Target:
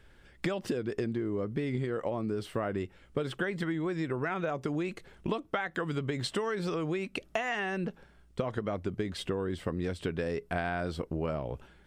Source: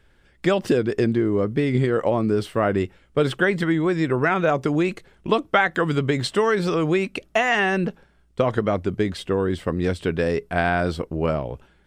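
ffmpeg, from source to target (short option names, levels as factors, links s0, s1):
-af "acompressor=threshold=0.0316:ratio=6"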